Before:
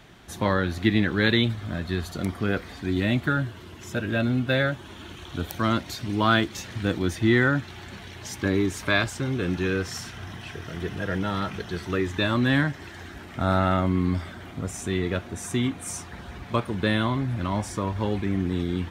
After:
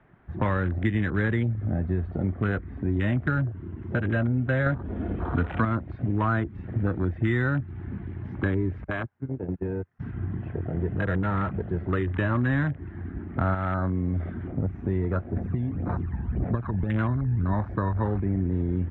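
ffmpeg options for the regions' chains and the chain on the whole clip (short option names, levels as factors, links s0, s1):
-filter_complex "[0:a]asettb=1/sr,asplit=3[s0][s1][s2];[s0]atrim=end=4.664[s3];[s1]atrim=start=4.66:end=5.65,asetpts=PTS-STARTPTS,afade=t=in:d=0.004:c=qsin,afade=t=out:st=0.986:d=0.004:c=qsin,aecho=1:1:4.2:0.31,atrim=end_sample=43659,acontrast=82,bandreject=f=2800:w=25[s4];[s2]atrim=start=5.646[s5];[s3][s4]acrossfade=d=0.004:c1=hsin:c2=qsin[s6];[s6][s5]acrossfade=d=0.004:c1=qsin:c2=hsin,asettb=1/sr,asplit=3[s7][s8][s9];[s7]atrim=end=8.844[s10];[s8]atrim=start=8.84:end=10,asetpts=PTS-STARTPTS,afade=t=in:d=0.004:c=qsin,afade=t=out:st=1.156:d=0.004:c=qsin,highpass=f=64:w=0.5412,highpass=f=64:w=1.3066,agate=range=0.0447:threshold=0.0562:ratio=16:release=100:detection=peak,acompressor=threshold=0.0398:ratio=12:attack=3.2:release=140:knee=1:detection=peak[s11];[s9]atrim=start=9.996[s12];[s10][s11]acrossfade=d=0.004:c1=hsin:c2=qsin[s13];[s13][s12]acrossfade=d=0.004:c1=qsin:c2=hsin,asettb=1/sr,asplit=3[s14][s15][s16];[s14]atrim=end=13.544[s17];[s15]atrim=start=13.54:end=14.48,asetpts=PTS-STARTPTS,afade=t=in:d=0.004:c=qsin,afade=t=out:st=0.936:d=0.004:c=qsin,highshelf=f=2600:g=11,acompressor=threshold=0.0562:ratio=4:attack=3.2:release=140:knee=1:detection=peak[s18];[s16]atrim=start=14.476[s19];[s17][s18]acrossfade=d=0.004:c1=hsin:c2=qsin[s20];[s20][s19]acrossfade=d=0.004:c1=qsin:c2=hsin,asettb=1/sr,asplit=3[s21][s22][s23];[s21]atrim=end=15.364[s24];[s22]atrim=start=15.36:end=17.54,asetpts=PTS-STARTPTS,afade=t=in:d=0.004:c=qsin,afade=t=out:st=2.176:d=0.004:c=qsin,acompressor=threshold=0.0447:ratio=16:attack=3.2:release=140:knee=1:detection=peak,aphaser=in_gain=1:out_gain=1:delay=1.2:decay=0.66:speed=1.8:type=sinusoidal[s25];[s23]atrim=start=17.536[s26];[s24][s25]acrossfade=d=0.004:c1=hsin:c2=qsin[s27];[s27][s26]acrossfade=d=0.004:c1=qsin:c2=hsin,lowpass=f=1900:w=0.5412,lowpass=f=1900:w=1.3066,afwtdn=0.02,acrossover=split=120|1400[s28][s29][s30];[s28]acompressor=threshold=0.0158:ratio=4[s31];[s29]acompressor=threshold=0.0126:ratio=4[s32];[s30]acompressor=threshold=0.00631:ratio=4[s33];[s31][s32][s33]amix=inputs=3:normalize=0,volume=2.82"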